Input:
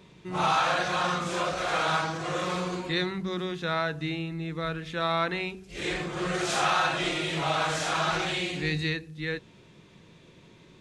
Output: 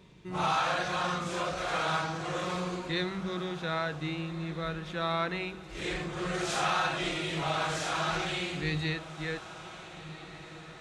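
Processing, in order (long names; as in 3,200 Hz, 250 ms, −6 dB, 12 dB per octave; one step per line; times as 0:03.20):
low-shelf EQ 89 Hz +7 dB
feedback delay with all-pass diffusion 1,562 ms, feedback 51%, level −14.5 dB
level −4 dB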